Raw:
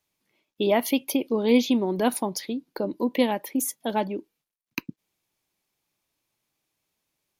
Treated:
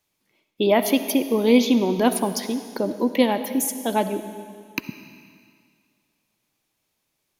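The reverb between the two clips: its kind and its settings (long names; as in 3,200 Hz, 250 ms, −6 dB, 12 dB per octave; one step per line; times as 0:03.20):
comb and all-pass reverb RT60 2.1 s, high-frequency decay 1×, pre-delay 25 ms, DRR 10 dB
level +3.5 dB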